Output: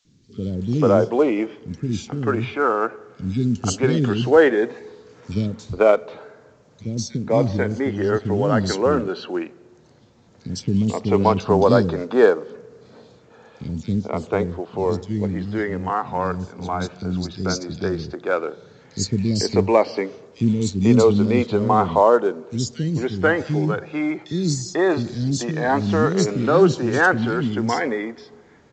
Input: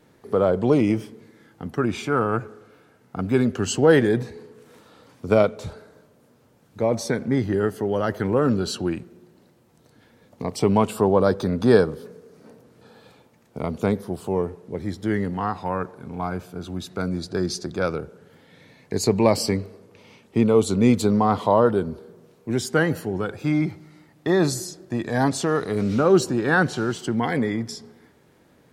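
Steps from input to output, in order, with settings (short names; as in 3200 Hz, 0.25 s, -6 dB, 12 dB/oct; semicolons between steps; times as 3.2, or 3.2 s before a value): three bands offset in time highs, lows, mids 50/490 ms, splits 280/3400 Hz; gain +4 dB; A-law 128 kbps 16000 Hz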